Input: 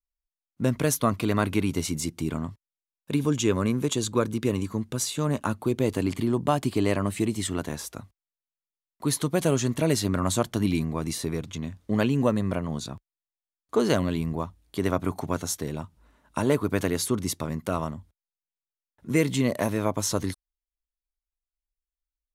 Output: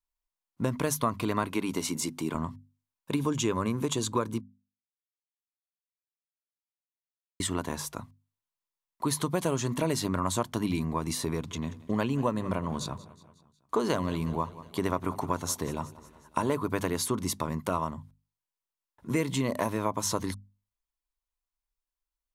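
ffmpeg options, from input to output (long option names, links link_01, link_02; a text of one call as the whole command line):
ffmpeg -i in.wav -filter_complex "[0:a]asettb=1/sr,asplit=3[link_01][link_02][link_03];[link_01]atrim=end=1.434[link_04];[link_02]atrim=start=1.43:end=2.35,asetpts=PTS-STARTPTS,afade=type=in:duration=0.004:curve=qsin,afade=type=out:start_time=0.916:duration=0.004:curve=qsin,highpass=190[link_05];[link_03]atrim=start=2.346[link_06];[link_04][link_05]acrossfade=duration=0.004:curve1=hsin:curve2=qsin[link_07];[link_07][link_06]acrossfade=duration=0.004:curve1=qsin:curve2=hsin,asettb=1/sr,asplit=3[link_08][link_09][link_10];[link_08]atrim=end=11.324[link_11];[link_09]atrim=start=11.32:end=16.4,asetpts=PTS-STARTPTS,afade=type=in:duration=0.004:curve=qsin,afade=type=out:start_time=5.076:duration=0.004:curve=qsin,aecho=1:1:182|364|546|728:0.106|0.0583|0.032|0.0176,atrim=end_sample=224028[link_12];[link_10]atrim=start=16.396[link_13];[link_11][link_12]acrossfade=duration=0.004:curve1=hsin:curve2=qsin[link_14];[link_14][link_13]acrossfade=duration=0.004:curve1=qsin:curve2=hsin,asplit=3[link_15][link_16][link_17];[link_15]atrim=end=4.41,asetpts=PTS-STARTPTS,afade=type=out:start_time=4.406:duration=0.004:curve=hsin[link_18];[link_16]atrim=start=4.41:end=7.4,asetpts=PTS-STARTPTS,volume=0[link_19];[link_17]atrim=start=7.4,asetpts=PTS-STARTPTS,afade=type=in:duration=0.004:curve=hsin[link_20];[link_18][link_19][link_20]concat=n=3:v=0:a=1,equalizer=frequency=1000:width_type=o:width=0.41:gain=9.5,bandreject=frequency=50:width_type=h:width=6,bandreject=frequency=100:width_type=h:width=6,bandreject=frequency=150:width_type=h:width=6,bandreject=frequency=200:width_type=h:width=6,bandreject=frequency=250:width_type=h:width=6,acompressor=threshold=-26dB:ratio=2.5" out.wav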